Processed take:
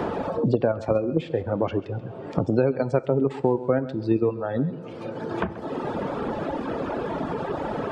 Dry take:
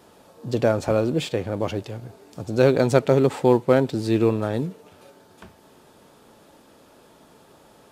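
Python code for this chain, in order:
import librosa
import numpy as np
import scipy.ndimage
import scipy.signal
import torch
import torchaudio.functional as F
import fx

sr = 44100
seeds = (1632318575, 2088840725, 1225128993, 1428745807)

p1 = fx.spec_gate(x, sr, threshold_db=-30, keep='strong')
p2 = fx.dereverb_blind(p1, sr, rt60_s=1.6)
p3 = fx.level_steps(p2, sr, step_db=21)
p4 = p2 + F.gain(torch.from_numpy(p3), -1.5).numpy()
p5 = fx.quant_float(p4, sr, bits=8)
p6 = fx.spacing_loss(p5, sr, db_at_10k=23)
p7 = p6 + 10.0 ** (-18.0 / 20.0) * np.pad(p6, (int(133 * sr / 1000.0), 0))[:len(p6)]
p8 = fx.rev_double_slope(p7, sr, seeds[0], early_s=0.51, late_s=4.2, knee_db=-18, drr_db=15.5)
p9 = fx.band_squash(p8, sr, depth_pct=100)
y = F.gain(torch.from_numpy(p9), -3.0).numpy()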